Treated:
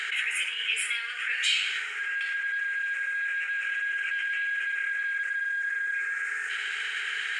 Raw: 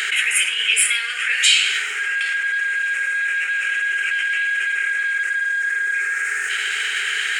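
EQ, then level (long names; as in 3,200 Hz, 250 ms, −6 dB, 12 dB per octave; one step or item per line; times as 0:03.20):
high-pass filter 460 Hz 12 dB per octave
low-pass filter 2,600 Hz 6 dB per octave
−7.0 dB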